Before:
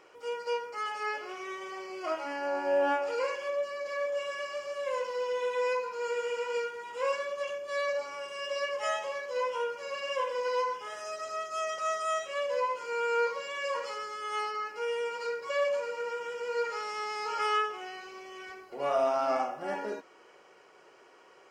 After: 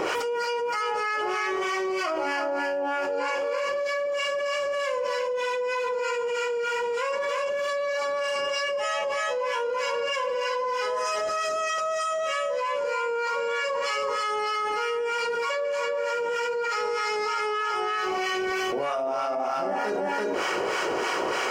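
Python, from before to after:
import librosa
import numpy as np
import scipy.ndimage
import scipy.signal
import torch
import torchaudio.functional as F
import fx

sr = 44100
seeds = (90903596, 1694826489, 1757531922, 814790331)

y = fx.harmonic_tremolo(x, sr, hz=3.2, depth_pct=70, crossover_hz=910.0)
y = y + 10.0 ** (-5.0 / 20.0) * np.pad(y, (int(335 * sr / 1000.0), 0))[:len(y)]
y = fx.env_flatten(y, sr, amount_pct=100)
y = y * librosa.db_to_amplitude(-1.5)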